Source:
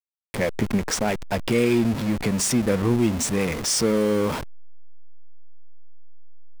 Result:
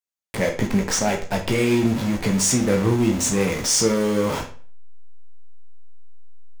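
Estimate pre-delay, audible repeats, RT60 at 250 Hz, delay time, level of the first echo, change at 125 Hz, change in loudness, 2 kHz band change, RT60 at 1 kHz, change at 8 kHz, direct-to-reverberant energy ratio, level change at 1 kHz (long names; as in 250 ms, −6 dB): 12 ms, no echo audible, 0.45 s, no echo audible, no echo audible, +2.0 dB, +2.0 dB, +2.0 dB, 0.40 s, +4.5 dB, 2.0 dB, +2.5 dB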